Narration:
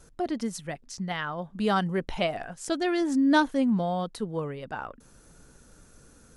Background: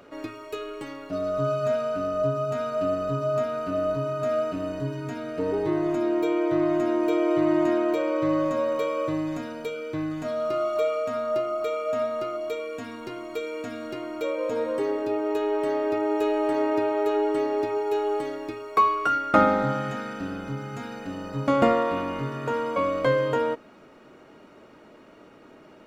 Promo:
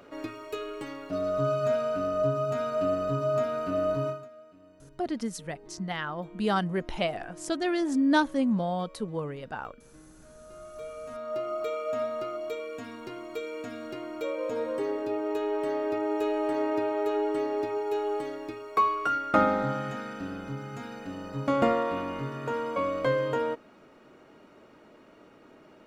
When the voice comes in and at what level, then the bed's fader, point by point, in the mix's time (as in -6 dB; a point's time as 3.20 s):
4.80 s, -1.5 dB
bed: 4.09 s -1.5 dB
4.30 s -25 dB
10.35 s -25 dB
11.52 s -4 dB